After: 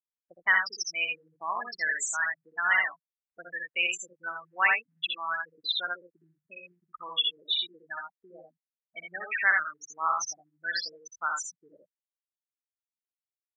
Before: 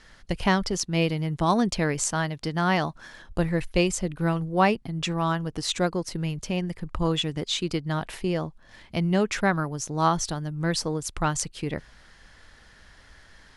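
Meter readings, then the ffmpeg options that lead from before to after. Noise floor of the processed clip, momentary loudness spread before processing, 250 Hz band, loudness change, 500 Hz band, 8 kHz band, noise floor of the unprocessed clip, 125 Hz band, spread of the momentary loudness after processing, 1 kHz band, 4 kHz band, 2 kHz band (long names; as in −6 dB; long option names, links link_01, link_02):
below −85 dBFS, 8 LU, −32.0 dB, −2.5 dB, −19.0 dB, −5.0 dB, −53 dBFS, below −35 dB, 16 LU, −5.5 dB, 0.0 dB, +5.5 dB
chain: -af "afftfilt=real='re*gte(hypot(re,im),0.126)':imag='im*gte(hypot(re,im),0.126)':win_size=1024:overlap=0.75,highpass=frequency=1800:width_type=q:width=2.4,aecho=1:1:63|80:0.596|0.501"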